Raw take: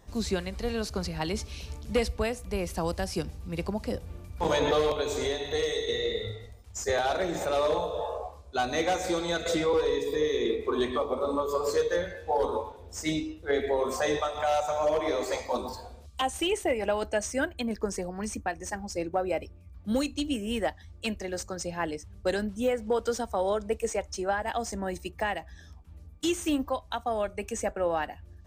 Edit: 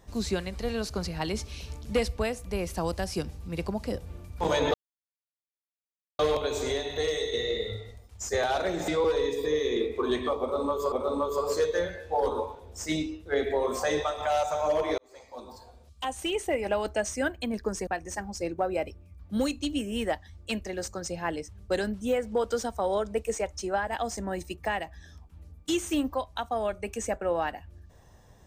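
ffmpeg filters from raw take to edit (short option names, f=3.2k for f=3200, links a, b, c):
-filter_complex "[0:a]asplit=6[a][b][c][d][e][f];[a]atrim=end=4.74,asetpts=PTS-STARTPTS,afade=t=out:st=4.736:d=0.004:c=hsin,apad=pad_dur=1.45[g];[b]atrim=start=4.74:end=7.432,asetpts=PTS-STARTPTS,afade=t=in:d=0.004:c=hsin[h];[c]atrim=start=9.568:end=11.612[i];[d]atrim=start=11.088:end=15.15,asetpts=PTS-STARTPTS,afade=t=out:st=4.058:d=0.004:c=hsin[j];[e]atrim=start=15.15:end=18.042,asetpts=PTS-STARTPTS,afade=t=in:d=1.7[k];[f]atrim=start=18.418[l];[g][h]concat=n=2:v=0:a=1[m];[m][i]acrossfade=d=0.004:c1=hsin:c2=hsin[n];[j][k]concat=n=2:v=0:a=1[o];[n][o]acrossfade=d=0.004:c1=hsin:c2=hsin[p];[p][l]acrossfade=d=0.004:c1=hsin:c2=hsin"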